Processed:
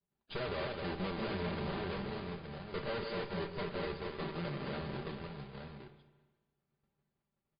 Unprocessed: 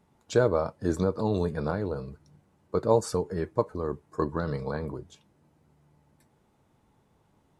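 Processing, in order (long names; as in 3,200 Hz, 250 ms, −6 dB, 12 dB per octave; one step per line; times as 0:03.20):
each half-wave held at its own peak
multi-tap delay 159/251/465/871 ms −14.5/−9.5/−14/−8.5 dB
downward expander −49 dBFS
0:04.08–0:04.82: high-pass filter 120 Hz 12 dB per octave
tube saturation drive 29 dB, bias 0.8
comb filter 5.1 ms, depth 48%
spring reverb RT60 1.3 s, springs 34/52 ms, chirp 35 ms, DRR 10 dB
level −6.5 dB
MP3 24 kbit/s 11,025 Hz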